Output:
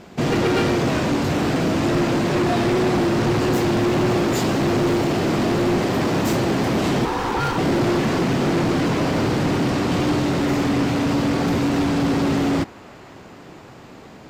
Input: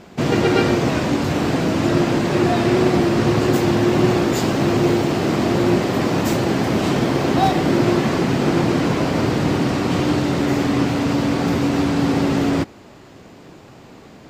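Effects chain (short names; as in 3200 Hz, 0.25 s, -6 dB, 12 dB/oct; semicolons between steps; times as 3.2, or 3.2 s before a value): hard clip -15.5 dBFS, distortion -12 dB; 7.05–7.58 ring modulator 630 Hz; on a send: band-limited delay 0.514 s, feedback 79%, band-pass 1300 Hz, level -22 dB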